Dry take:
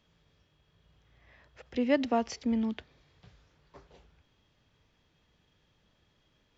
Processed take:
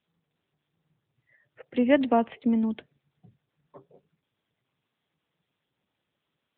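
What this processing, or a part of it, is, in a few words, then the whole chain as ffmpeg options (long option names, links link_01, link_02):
mobile call with aggressive noise cancelling: -af "highpass=frequency=110:width=0.5412,highpass=frequency=110:width=1.3066,afftdn=noise_reduction=26:noise_floor=-52,volume=6dB" -ar 8000 -c:a libopencore_amrnb -b:a 10200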